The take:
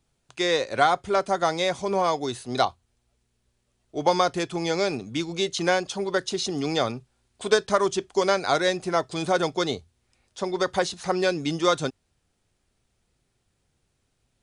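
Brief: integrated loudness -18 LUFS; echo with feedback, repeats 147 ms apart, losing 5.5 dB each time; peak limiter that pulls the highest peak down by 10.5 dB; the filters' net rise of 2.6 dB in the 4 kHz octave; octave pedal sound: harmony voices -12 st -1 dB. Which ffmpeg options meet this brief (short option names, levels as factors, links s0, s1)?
-filter_complex "[0:a]equalizer=f=4000:t=o:g=3,alimiter=limit=0.15:level=0:latency=1,aecho=1:1:147|294|441|588|735|882|1029:0.531|0.281|0.149|0.079|0.0419|0.0222|0.0118,asplit=2[s0][s1];[s1]asetrate=22050,aresample=44100,atempo=2,volume=0.891[s2];[s0][s2]amix=inputs=2:normalize=0,volume=2.24"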